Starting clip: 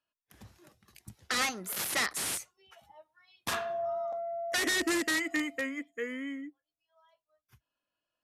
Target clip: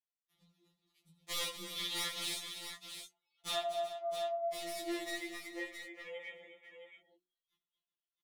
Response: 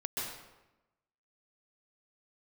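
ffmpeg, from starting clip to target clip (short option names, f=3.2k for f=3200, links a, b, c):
-filter_complex "[0:a]acrossover=split=250[a][b];[b]acompressor=threshold=-35dB:ratio=1.5[c];[a][c]amix=inputs=2:normalize=0,equalizer=f=3.6k:w=3.2:g=15,afwtdn=0.0112,aeval=exprs='0.0447*(abs(mod(val(0)/0.0447+3,4)-2)-1)':c=same,asettb=1/sr,asplit=3[d][e][f];[d]atrim=end=3.614[g];[e]atrim=start=3.61:end=6.06,asetpts=PTS-STARTPTS,afade=t=in:d=0.004:c=qsin,afade=t=out:st=2.446:d=0.004:c=qsin,acompressor=threshold=-39dB:ratio=4[h];[f]atrim=start=6.056[i];[g][h]acrossfade=d=0.004:c1=hsin:c2=qsin[j];[j][i]acrossfade=d=0.004:c1=qsin:c2=hsin,flanger=delay=17:depth=6:speed=0.76,asuperstop=centerf=1600:order=4:qfactor=6.9,equalizer=f=150:w=2.2:g=-2.5,bandreject=f=60:t=h:w=6,bandreject=f=120:t=h:w=6,bandreject=f=180:t=h:w=6,bandreject=f=240:t=h:w=6,bandreject=f=300:t=h:w=6,bandreject=f=360:t=h:w=6,aecho=1:1:83|239|373|666:0.168|0.282|0.178|0.376,afftfilt=real='re*2.83*eq(mod(b,8),0)':imag='im*2.83*eq(mod(b,8),0)':win_size=2048:overlap=0.75,volume=1dB"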